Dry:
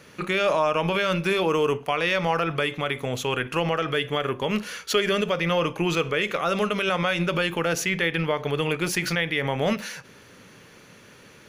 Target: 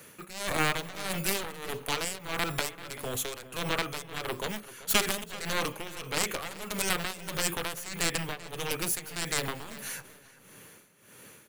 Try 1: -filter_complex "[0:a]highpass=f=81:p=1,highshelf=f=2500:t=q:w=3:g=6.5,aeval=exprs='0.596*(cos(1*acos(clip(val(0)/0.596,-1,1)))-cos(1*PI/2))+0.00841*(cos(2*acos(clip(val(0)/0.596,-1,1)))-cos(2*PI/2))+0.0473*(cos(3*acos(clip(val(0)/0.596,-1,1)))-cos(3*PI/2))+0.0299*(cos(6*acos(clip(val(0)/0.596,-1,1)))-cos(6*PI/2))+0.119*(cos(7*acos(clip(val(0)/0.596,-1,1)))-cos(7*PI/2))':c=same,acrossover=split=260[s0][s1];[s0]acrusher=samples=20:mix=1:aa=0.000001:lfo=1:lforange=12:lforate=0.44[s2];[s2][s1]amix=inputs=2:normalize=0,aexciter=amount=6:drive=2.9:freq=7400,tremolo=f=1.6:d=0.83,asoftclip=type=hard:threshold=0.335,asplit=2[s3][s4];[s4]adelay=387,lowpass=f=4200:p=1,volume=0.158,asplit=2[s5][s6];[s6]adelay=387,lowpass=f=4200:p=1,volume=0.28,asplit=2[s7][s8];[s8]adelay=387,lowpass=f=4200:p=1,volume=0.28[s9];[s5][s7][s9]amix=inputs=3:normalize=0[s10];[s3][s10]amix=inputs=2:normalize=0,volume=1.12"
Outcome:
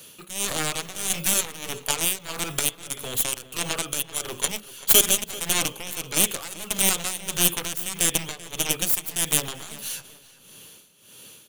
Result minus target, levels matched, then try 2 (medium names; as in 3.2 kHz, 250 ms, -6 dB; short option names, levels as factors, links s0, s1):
2 kHz band -7.0 dB
-filter_complex "[0:a]highpass=f=81:p=1,aeval=exprs='0.596*(cos(1*acos(clip(val(0)/0.596,-1,1)))-cos(1*PI/2))+0.00841*(cos(2*acos(clip(val(0)/0.596,-1,1)))-cos(2*PI/2))+0.0473*(cos(3*acos(clip(val(0)/0.596,-1,1)))-cos(3*PI/2))+0.0299*(cos(6*acos(clip(val(0)/0.596,-1,1)))-cos(6*PI/2))+0.119*(cos(7*acos(clip(val(0)/0.596,-1,1)))-cos(7*PI/2))':c=same,acrossover=split=260[s0][s1];[s0]acrusher=samples=20:mix=1:aa=0.000001:lfo=1:lforange=12:lforate=0.44[s2];[s2][s1]amix=inputs=2:normalize=0,aexciter=amount=6:drive=2.9:freq=7400,tremolo=f=1.6:d=0.83,asoftclip=type=hard:threshold=0.335,asplit=2[s3][s4];[s4]adelay=387,lowpass=f=4200:p=1,volume=0.158,asplit=2[s5][s6];[s6]adelay=387,lowpass=f=4200:p=1,volume=0.28,asplit=2[s7][s8];[s8]adelay=387,lowpass=f=4200:p=1,volume=0.28[s9];[s5][s7][s9]amix=inputs=3:normalize=0[s10];[s3][s10]amix=inputs=2:normalize=0,volume=1.12"